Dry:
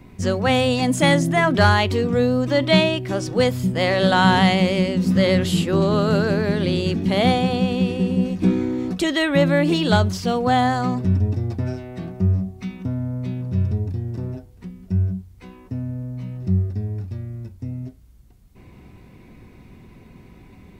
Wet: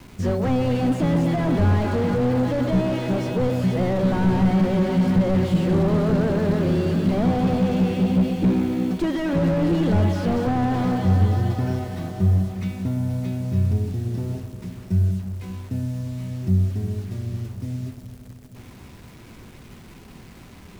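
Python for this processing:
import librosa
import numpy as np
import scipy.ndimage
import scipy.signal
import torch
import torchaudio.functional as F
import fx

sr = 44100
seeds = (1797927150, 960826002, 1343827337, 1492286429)

y = fx.quant_dither(x, sr, seeds[0], bits=8, dither='none')
y = fx.echo_alternate(y, sr, ms=118, hz=880.0, feedback_pct=85, wet_db=-10.5)
y = fx.slew_limit(y, sr, full_power_hz=44.0)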